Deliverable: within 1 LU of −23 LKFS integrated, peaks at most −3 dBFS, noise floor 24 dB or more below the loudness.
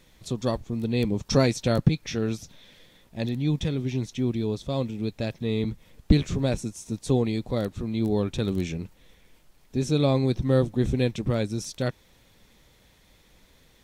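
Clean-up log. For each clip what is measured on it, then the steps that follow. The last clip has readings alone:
crackle rate 23 per second; integrated loudness −27.0 LKFS; sample peak −6.0 dBFS; target loudness −23.0 LKFS
→ click removal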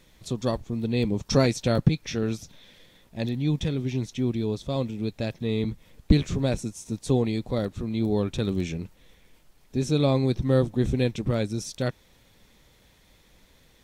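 crackle rate 0.22 per second; integrated loudness −27.0 LKFS; sample peak −6.0 dBFS; target loudness −23.0 LKFS
→ level +4 dB
brickwall limiter −3 dBFS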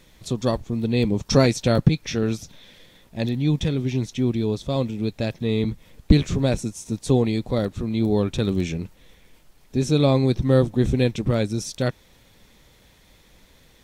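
integrated loudness −23.0 LKFS; sample peak −3.0 dBFS; background noise floor −55 dBFS

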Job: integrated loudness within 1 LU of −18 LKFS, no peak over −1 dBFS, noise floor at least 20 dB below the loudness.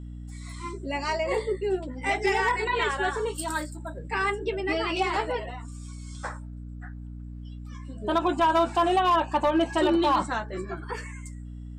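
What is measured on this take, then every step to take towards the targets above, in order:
share of clipped samples 0.4%; peaks flattened at −16.0 dBFS; mains hum 60 Hz; hum harmonics up to 300 Hz; level of the hum −36 dBFS; integrated loudness −26.5 LKFS; sample peak −16.0 dBFS; target loudness −18.0 LKFS
→ clipped peaks rebuilt −16 dBFS
hum removal 60 Hz, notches 5
level +8.5 dB

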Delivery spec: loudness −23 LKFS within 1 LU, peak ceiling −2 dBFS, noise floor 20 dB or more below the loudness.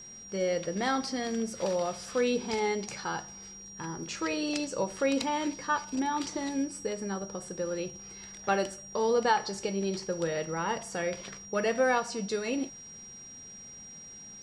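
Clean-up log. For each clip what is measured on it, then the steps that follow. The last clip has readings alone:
interfering tone 5,700 Hz; level of the tone −45 dBFS; integrated loudness −31.5 LKFS; sample peak −13.5 dBFS; target loudness −23.0 LKFS
→ notch filter 5,700 Hz, Q 30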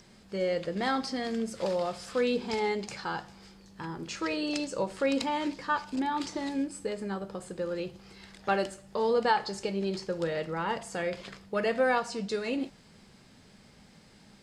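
interfering tone none found; integrated loudness −31.5 LKFS; sample peak −13.5 dBFS; target loudness −23.0 LKFS
→ level +8.5 dB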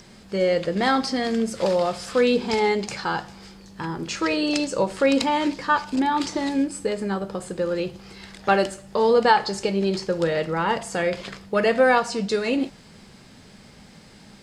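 integrated loudness −23.0 LKFS; sample peak −5.0 dBFS; background noise floor −48 dBFS

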